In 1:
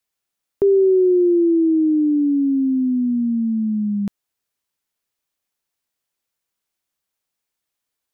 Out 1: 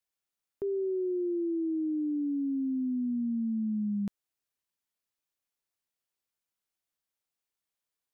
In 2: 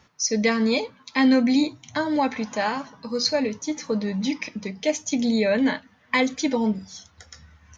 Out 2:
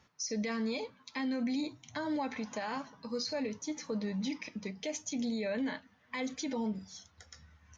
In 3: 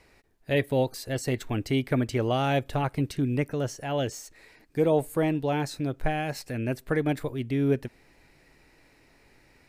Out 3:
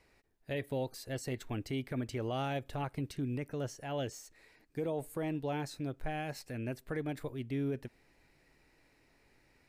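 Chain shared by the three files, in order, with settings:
peak limiter -19 dBFS; trim -8.5 dB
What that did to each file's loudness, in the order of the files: -14.0 LU, -13.0 LU, -10.5 LU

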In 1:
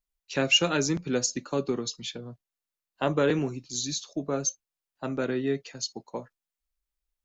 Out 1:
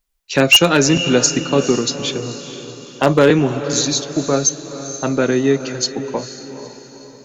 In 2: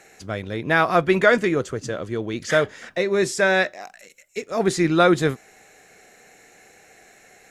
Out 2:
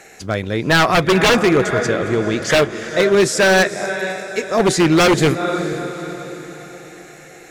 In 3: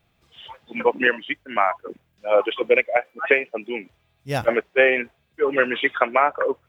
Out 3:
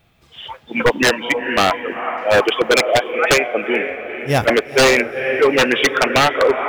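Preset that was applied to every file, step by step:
echo that smears into a reverb 471 ms, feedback 47%, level -11.5 dB; wavefolder -14.5 dBFS; normalise loudness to -16 LUFS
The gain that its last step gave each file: +12.5 dB, +7.5 dB, +8.5 dB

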